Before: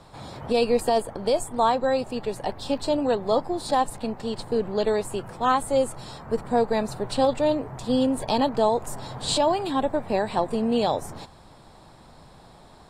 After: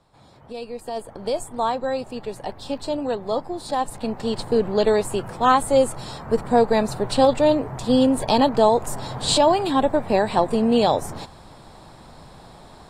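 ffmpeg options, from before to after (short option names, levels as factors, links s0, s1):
-af "volume=1.78,afade=t=in:st=0.81:d=0.45:silence=0.316228,afade=t=in:st=3.76:d=0.52:silence=0.446684"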